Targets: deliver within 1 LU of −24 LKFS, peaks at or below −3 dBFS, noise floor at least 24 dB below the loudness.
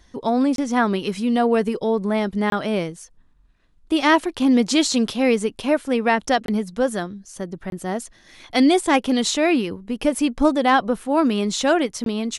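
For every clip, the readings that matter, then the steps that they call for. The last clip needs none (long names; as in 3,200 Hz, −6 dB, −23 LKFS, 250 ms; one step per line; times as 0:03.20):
number of dropouts 5; longest dropout 22 ms; integrated loudness −20.5 LKFS; sample peak −3.5 dBFS; target loudness −24.0 LKFS
→ repair the gap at 0:00.56/0:02.50/0:06.46/0:07.70/0:12.04, 22 ms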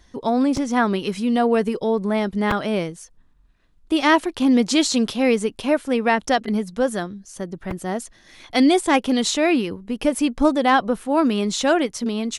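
number of dropouts 0; integrated loudness −20.5 LKFS; sample peak −3.5 dBFS; target loudness −24.0 LKFS
→ level −3.5 dB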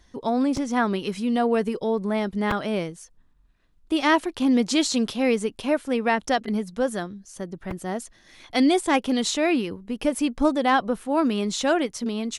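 integrated loudness −24.0 LKFS; sample peak −7.0 dBFS; background noise floor −59 dBFS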